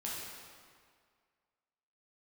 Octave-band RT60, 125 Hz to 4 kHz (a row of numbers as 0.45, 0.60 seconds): 1.8, 1.9, 2.0, 2.0, 1.8, 1.5 seconds